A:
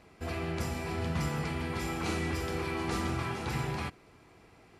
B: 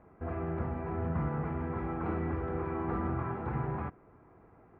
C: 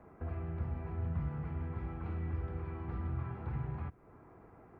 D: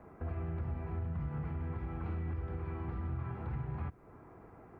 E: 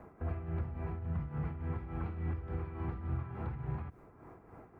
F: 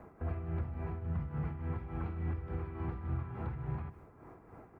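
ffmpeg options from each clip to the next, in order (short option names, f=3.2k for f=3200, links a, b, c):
-af "lowpass=f=1.5k:w=0.5412,lowpass=f=1.5k:w=1.3066"
-filter_complex "[0:a]acrossover=split=130|3000[a][b][c];[b]acompressor=threshold=-49dB:ratio=5[d];[a][d][c]amix=inputs=3:normalize=0,volume=1.5dB"
-af "alimiter=level_in=8.5dB:limit=-24dB:level=0:latency=1:release=98,volume=-8.5dB,volume=2.5dB"
-af "tremolo=f=3.5:d=0.63,volume=3dB"
-af "aecho=1:1:155:0.168"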